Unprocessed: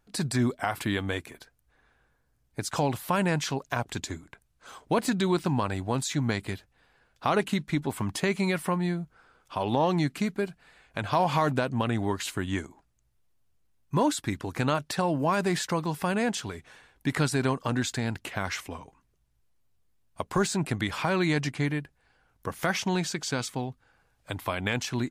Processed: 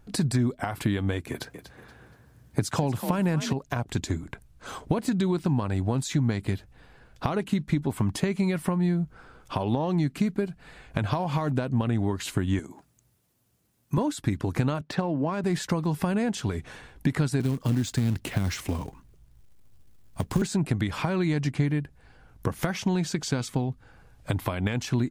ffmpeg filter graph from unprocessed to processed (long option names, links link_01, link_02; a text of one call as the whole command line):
ffmpeg -i in.wav -filter_complex "[0:a]asettb=1/sr,asplit=3[link_01][link_02][link_03];[link_01]atrim=end=1.304[link_04];[link_02]atrim=start=1.3:end=3.53,asetpts=PTS-STARTPTS,afade=type=in:duration=0.004:curve=qsin,afade=type=out:start_time=2.226:duration=0.004:curve=qsin,highpass=frequency=75:width=0.5412,highpass=frequency=75:width=1.3066,acontrast=46,asplit=4[link_05][link_06][link_07][link_08];[link_06]adelay=238,afreqshift=46,volume=-13dB[link_09];[link_07]adelay=476,afreqshift=92,volume=-23.2dB[link_10];[link_08]adelay=714,afreqshift=138,volume=-33.3dB[link_11];[link_05][link_09][link_10][link_11]amix=inputs=4:normalize=0,atrim=end_sample=98343[link_12];[link_03]atrim=start=3.526[link_13];[link_04][link_12]acrossfade=duration=0.004:curve1=hsin:curve2=qsin[link_14];[link_14][link_13]acrossfade=duration=0.004:curve1=qsin:curve2=hsin,asettb=1/sr,asplit=3[link_15][link_16][link_17];[link_15]atrim=end=12.594[link_18];[link_16]atrim=start=12.59:end=13.98,asetpts=PTS-STARTPTS,afade=type=in:duration=0.004:curve=qsin,afade=type=out:start_time=1.386:duration=0.004:curve=qsin,highpass=150,highshelf=frequency=6300:gain=9,acompressor=threshold=-44dB:ratio=1.5:attack=3.2:release=140:knee=1:detection=peak[link_19];[link_17]atrim=start=13.976[link_20];[link_18][link_19]acrossfade=duration=0.004:curve1=hsin:curve2=qsin[link_21];[link_21][link_20]acrossfade=duration=0.004:curve1=qsin:curve2=hsin,asettb=1/sr,asplit=3[link_22][link_23][link_24];[link_22]atrim=end=14.814[link_25];[link_23]atrim=start=14.81:end=15.44,asetpts=PTS-STARTPTS,afade=type=in:duration=0.004:curve=qsin,afade=type=out:start_time=0.626:duration=0.004:curve=qsin,highpass=160,adynamicsmooth=sensitivity=2.5:basefreq=3300[link_26];[link_24]atrim=start=15.436[link_27];[link_25][link_26]acrossfade=duration=0.004:curve1=hsin:curve2=qsin[link_28];[link_28][link_27]acrossfade=duration=0.004:curve1=qsin:curve2=hsin,asettb=1/sr,asplit=3[link_29][link_30][link_31];[link_29]atrim=end=17.404[link_32];[link_30]atrim=start=17.4:end=20.42,asetpts=PTS-STARTPTS,afade=type=in:duration=0.004:curve=qsin,afade=type=out:start_time=3.016:duration=0.004:curve=qsin,acrossover=split=370|3000[link_33][link_34][link_35];[link_34]acompressor=threshold=-42dB:ratio=4:attack=3.2:release=140:knee=2.83:detection=peak[link_36];[link_33][link_36][link_35]amix=inputs=3:normalize=0,acrusher=bits=3:mode=log:mix=0:aa=0.000001[link_37];[link_31]atrim=start=20.416[link_38];[link_32][link_37]acrossfade=duration=0.004:curve1=hsin:curve2=qsin[link_39];[link_39][link_38]acrossfade=duration=0.004:curve1=qsin:curve2=hsin,acompressor=threshold=-37dB:ratio=5,lowshelf=frequency=400:gain=10.5,volume=6.5dB" out.wav